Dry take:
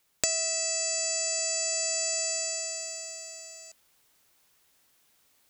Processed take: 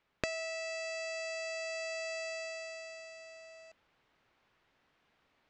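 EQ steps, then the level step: low-pass 2.5 kHz 12 dB/octave; dynamic bell 770 Hz, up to -4 dB, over -53 dBFS, Q 1; distance through air 61 m; +1.5 dB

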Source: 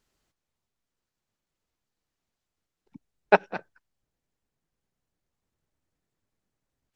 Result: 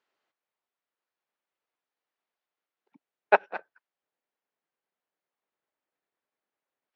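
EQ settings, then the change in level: band-pass 500–2900 Hz; 0.0 dB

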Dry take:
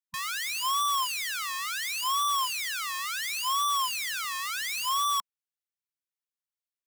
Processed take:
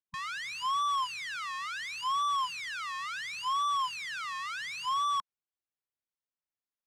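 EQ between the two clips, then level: low-pass 6.4 kHz 12 dB/octave; treble shelf 2.5 kHz -10 dB; 0.0 dB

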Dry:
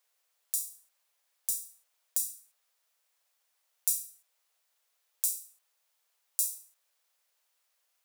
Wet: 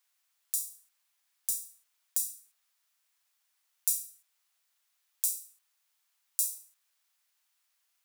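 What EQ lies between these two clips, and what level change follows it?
high-pass 970 Hz 12 dB/octave; 0.0 dB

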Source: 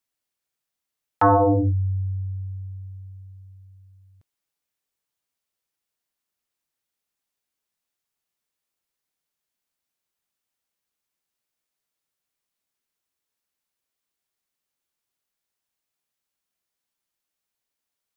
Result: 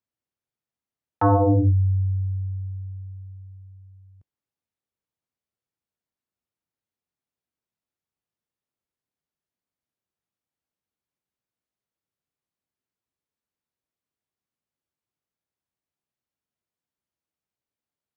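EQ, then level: high-pass 80 Hz 12 dB/octave; tilt EQ -3 dB/octave; -5.0 dB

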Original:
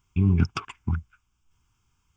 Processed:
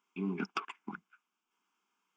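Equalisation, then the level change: elliptic high-pass 190 Hz, stop band 40 dB; tone controls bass -11 dB, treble -12 dB; treble shelf 5.4 kHz +4.5 dB; -2.5 dB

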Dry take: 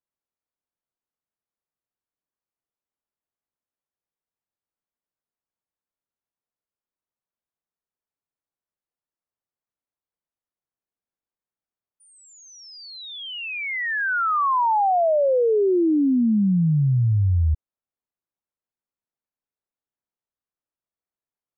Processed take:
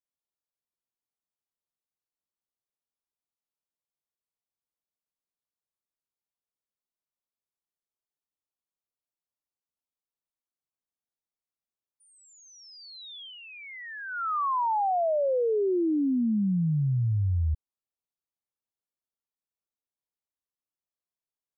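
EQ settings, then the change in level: high-order bell 2.1 kHz -8.5 dB 1.1 oct; -6.5 dB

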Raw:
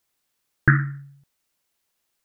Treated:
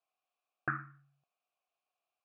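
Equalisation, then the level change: vowel filter a; +3.0 dB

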